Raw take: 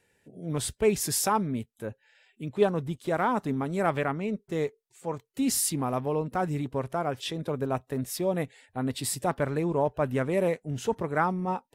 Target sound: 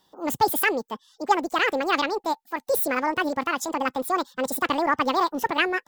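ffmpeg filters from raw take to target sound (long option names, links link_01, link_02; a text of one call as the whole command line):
ffmpeg -i in.wav -af "asetrate=88200,aresample=44100,volume=4dB" out.wav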